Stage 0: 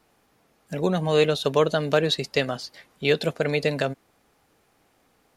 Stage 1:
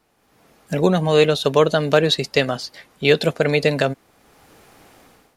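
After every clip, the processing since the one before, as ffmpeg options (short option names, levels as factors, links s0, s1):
-af "dynaudnorm=f=160:g=5:m=6.31,volume=0.891"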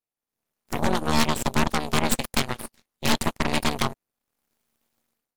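-af "aemphasis=mode=production:type=50kf,aeval=exprs='1*(cos(1*acos(clip(val(0)/1,-1,1)))-cos(1*PI/2))+0.355*(cos(3*acos(clip(val(0)/1,-1,1)))-cos(3*PI/2))+0.355*(cos(8*acos(clip(val(0)/1,-1,1)))-cos(8*PI/2))':c=same,tremolo=f=230:d=0.919,volume=0.501"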